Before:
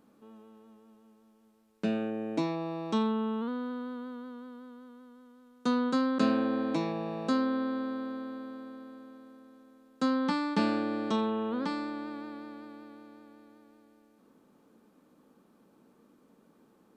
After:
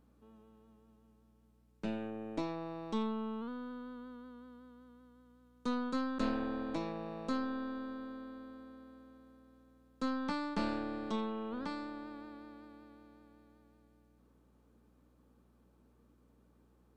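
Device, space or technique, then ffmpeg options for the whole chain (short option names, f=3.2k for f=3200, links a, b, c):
valve amplifier with mains hum: -af "aeval=exprs='(tanh(10*val(0)+0.7)-tanh(0.7))/10':c=same,aeval=exprs='val(0)+0.000631*(sin(2*PI*60*n/s)+sin(2*PI*2*60*n/s)/2+sin(2*PI*3*60*n/s)/3+sin(2*PI*4*60*n/s)/4+sin(2*PI*5*60*n/s)/5)':c=same,volume=-4dB"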